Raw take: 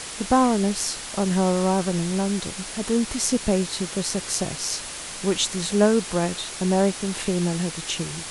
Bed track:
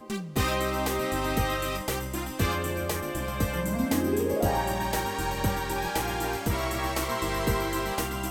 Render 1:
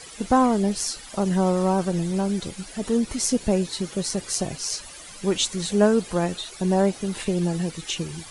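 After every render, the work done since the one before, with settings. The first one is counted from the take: noise reduction 13 dB, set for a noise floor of -35 dBFS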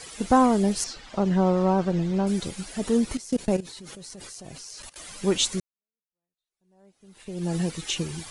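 0.84–2.27 s: distance through air 140 m; 3.17–4.96 s: level held to a coarse grid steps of 21 dB; 5.60–7.55 s: fade in exponential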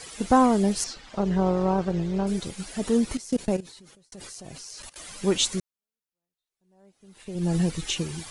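0.94–2.60 s: AM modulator 230 Hz, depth 25%; 3.40–4.12 s: fade out; 7.35–7.93 s: bass shelf 110 Hz +11.5 dB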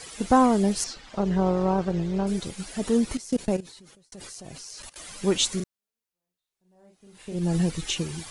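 5.56–7.39 s: doubling 39 ms -3.5 dB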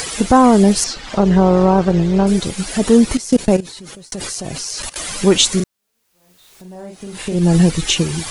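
in parallel at +3 dB: upward compressor, threshold -28 dBFS; on the sum: loudness maximiser +4.5 dB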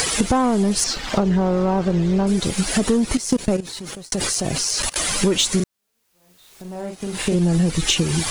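waveshaping leveller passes 1; compression 10:1, threshold -15 dBFS, peak gain reduction 10.5 dB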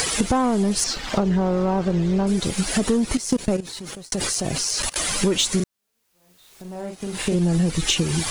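trim -2 dB

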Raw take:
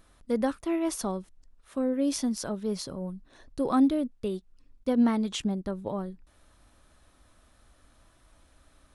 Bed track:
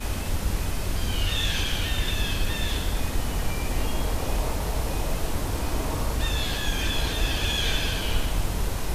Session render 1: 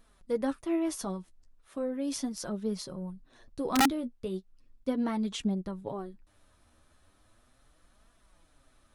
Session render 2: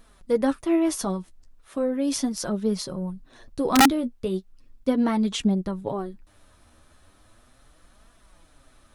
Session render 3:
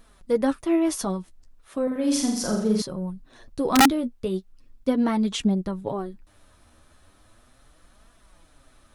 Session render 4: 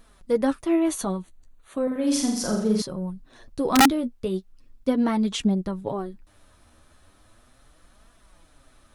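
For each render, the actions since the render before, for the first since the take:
flange 0.37 Hz, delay 4.1 ms, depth 8.6 ms, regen +29%; integer overflow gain 18 dB
trim +8 dB
1.83–2.82 s: flutter echo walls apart 7.2 m, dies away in 0.68 s
0.74–2.07 s: Butterworth band-stop 5.2 kHz, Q 4.8

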